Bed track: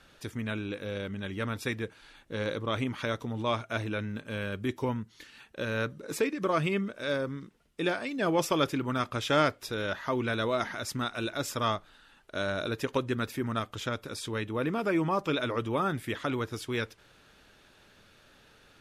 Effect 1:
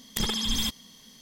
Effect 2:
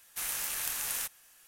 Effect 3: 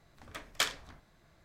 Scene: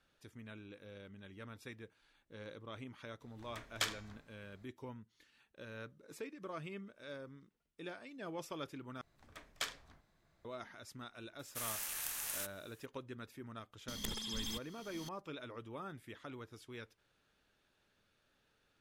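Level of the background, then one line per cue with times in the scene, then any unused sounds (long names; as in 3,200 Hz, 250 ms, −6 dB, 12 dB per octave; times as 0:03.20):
bed track −17.5 dB
0:03.21: mix in 3 −5.5 dB + hum removal 227.7 Hz, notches 32
0:09.01: overwrite with 3 −9.5 dB
0:11.39: mix in 2 −7 dB
0:13.88: mix in 1 −14 dB + multiband upward and downward compressor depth 100%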